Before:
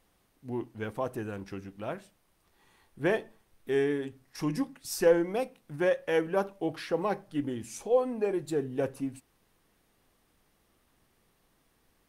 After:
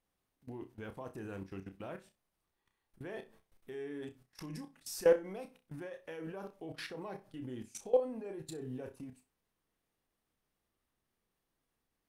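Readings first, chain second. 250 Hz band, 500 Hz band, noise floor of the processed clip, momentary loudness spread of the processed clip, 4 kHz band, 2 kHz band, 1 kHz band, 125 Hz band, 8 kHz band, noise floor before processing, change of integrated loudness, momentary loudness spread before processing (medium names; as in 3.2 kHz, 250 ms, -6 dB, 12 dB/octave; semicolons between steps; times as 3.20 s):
-11.5 dB, -7.5 dB, -85 dBFS, 17 LU, -7.5 dB, -11.5 dB, -12.0 dB, -8.5 dB, -6.5 dB, -71 dBFS, -8.5 dB, 12 LU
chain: level held to a coarse grid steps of 21 dB; flutter echo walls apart 5.4 m, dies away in 0.21 s; trim -1.5 dB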